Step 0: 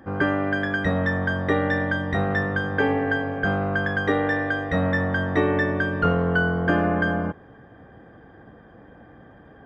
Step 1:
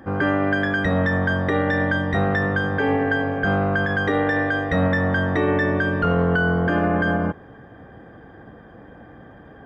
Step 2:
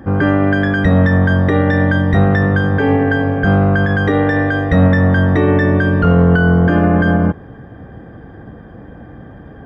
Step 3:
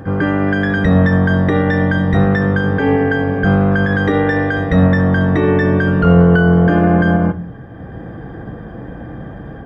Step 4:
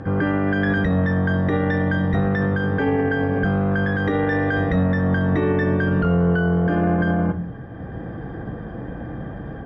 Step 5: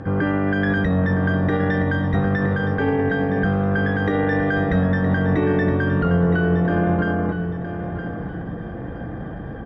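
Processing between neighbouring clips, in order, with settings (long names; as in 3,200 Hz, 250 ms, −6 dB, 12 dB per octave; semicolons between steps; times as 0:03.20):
brickwall limiter −15.5 dBFS, peak gain reduction 7 dB; level +4 dB
low-shelf EQ 290 Hz +10 dB; level +3 dB
automatic gain control gain up to 6.5 dB; echo ahead of the sound 149 ms −17.5 dB; on a send at −12 dB: convolution reverb RT60 0.45 s, pre-delay 6 ms; on the sum: level −1.5 dB
brickwall limiter −10.5 dBFS, peak gain reduction 9 dB; high-frequency loss of the air 72 metres; level −1.5 dB
repeating echo 967 ms, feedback 33%, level −10 dB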